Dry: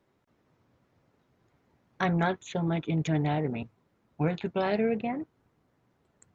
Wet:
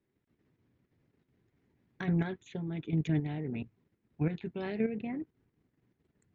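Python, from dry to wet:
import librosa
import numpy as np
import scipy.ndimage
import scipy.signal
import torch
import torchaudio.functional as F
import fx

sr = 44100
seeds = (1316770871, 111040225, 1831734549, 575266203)

y = fx.lowpass(x, sr, hz=2300.0, slope=6)
y = fx.band_shelf(y, sr, hz=850.0, db=-9.5, octaves=1.7)
y = fx.level_steps(y, sr, step_db=9)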